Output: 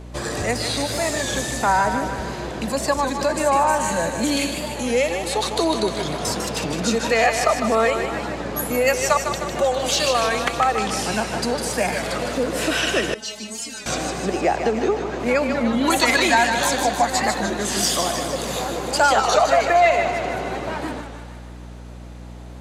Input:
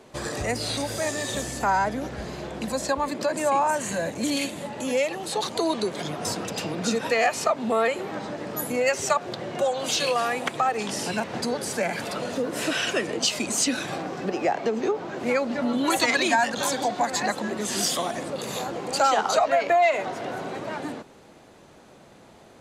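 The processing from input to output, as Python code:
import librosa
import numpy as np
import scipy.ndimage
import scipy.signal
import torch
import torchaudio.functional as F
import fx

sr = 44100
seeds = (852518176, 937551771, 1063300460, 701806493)

y = fx.echo_thinned(x, sr, ms=153, feedback_pct=62, hz=420.0, wet_db=-6.5)
y = fx.add_hum(y, sr, base_hz=60, snr_db=16)
y = fx.stiff_resonator(y, sr, f0_hz=210.0, decay_s=0.24, stiffness=0.002, at=(13.14, 13.87))
y = fx.record_warp(y, sr, rpm=33.33, depth_cents=100.0)
y = y * 10.0 ** (4.0 / 20.0)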